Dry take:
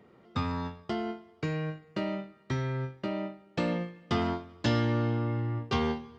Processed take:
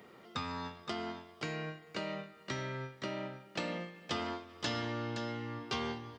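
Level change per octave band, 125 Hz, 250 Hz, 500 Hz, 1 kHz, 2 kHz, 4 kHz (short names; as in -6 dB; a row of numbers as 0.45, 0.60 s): -12.5, -9.5, -7.0, -5.0, -2.0, -0.5 dB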